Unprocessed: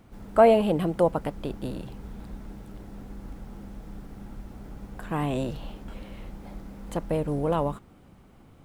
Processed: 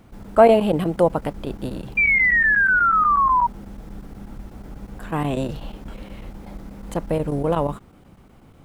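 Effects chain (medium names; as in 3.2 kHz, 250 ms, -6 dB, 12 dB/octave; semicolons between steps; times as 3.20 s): painted sound fall, 1.97–3.47 s, 940–2400 Hz -21 dBFS; square tremolo 8.2 Hz, depth 65%, duty 90%; trim +4.5 dB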